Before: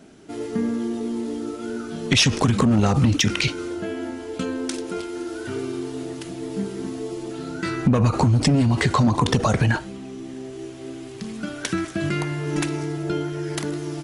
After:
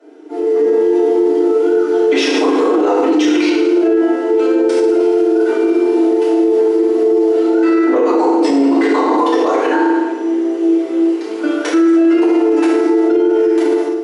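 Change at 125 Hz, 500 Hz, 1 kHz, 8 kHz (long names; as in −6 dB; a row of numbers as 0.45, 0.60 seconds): below −30 dB, +17.5 dB, +9.5 dB, can't be measured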